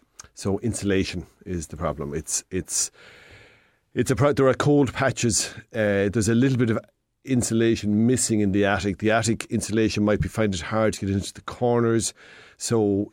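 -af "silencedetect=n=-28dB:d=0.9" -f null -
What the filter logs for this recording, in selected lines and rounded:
silence_start: 2.87
silence_end: 3.96 | silence_duration: 1.09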